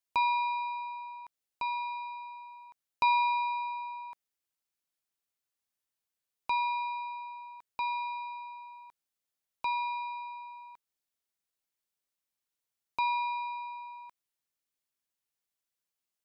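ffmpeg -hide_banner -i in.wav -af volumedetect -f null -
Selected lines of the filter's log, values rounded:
mean_volume: -36.7 dB
max_volume: -16.9 dB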